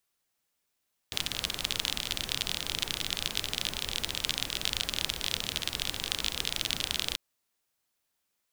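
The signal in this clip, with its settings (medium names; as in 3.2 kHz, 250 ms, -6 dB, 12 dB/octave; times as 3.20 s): rain from filtered ticks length 6.04 s, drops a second 34, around 3.4 kHz, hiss -6.5 dB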